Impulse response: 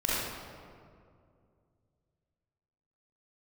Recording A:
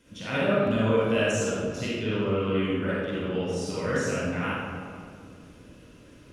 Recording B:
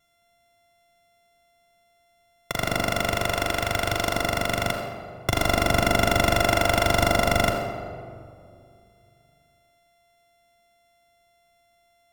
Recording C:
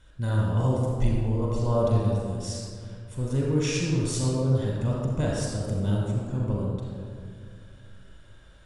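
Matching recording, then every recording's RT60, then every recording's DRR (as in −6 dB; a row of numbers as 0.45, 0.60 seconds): A; 2.3, 2.3, 2.3 seconds; −9.0, 1.5, −3.5 decibels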